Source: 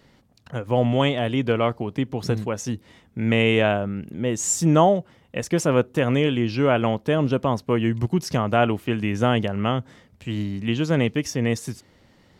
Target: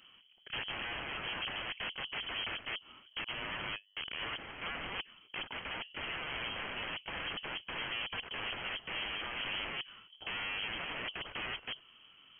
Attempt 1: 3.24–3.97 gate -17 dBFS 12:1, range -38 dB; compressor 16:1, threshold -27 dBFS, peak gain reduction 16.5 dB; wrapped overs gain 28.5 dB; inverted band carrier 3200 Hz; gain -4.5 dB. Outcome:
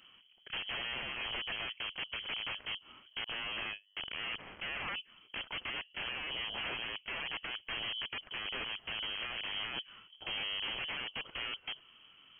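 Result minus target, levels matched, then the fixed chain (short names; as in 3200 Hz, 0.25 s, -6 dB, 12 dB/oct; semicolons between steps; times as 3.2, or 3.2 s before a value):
compressor: peak gain reduction +9.5 dB
3.24–3.97 gate -17 dBFS 12:1, range -38 dB; compressor 16:1, threshold -17 dBFS, peak gain reduction 7 dB; wrapped overs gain 28.5 dB; inverted band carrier 3200 Hz; gain -4.5 dB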